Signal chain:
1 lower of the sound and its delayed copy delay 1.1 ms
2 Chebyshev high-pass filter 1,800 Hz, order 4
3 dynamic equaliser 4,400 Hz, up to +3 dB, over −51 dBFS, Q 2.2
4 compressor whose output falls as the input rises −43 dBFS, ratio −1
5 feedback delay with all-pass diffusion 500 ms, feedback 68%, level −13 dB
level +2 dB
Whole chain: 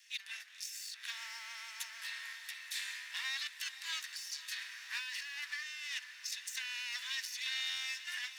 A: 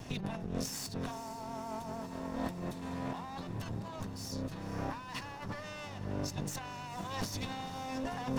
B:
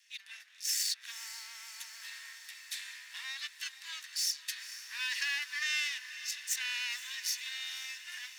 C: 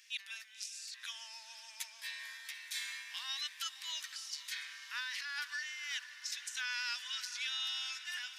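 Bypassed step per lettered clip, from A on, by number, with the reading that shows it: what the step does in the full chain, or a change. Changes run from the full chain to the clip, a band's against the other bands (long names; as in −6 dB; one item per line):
2, 1 kHz band +23.0 dB
4, change in crest factor +3.0 dB
1, 1 kHz band +3.5 dB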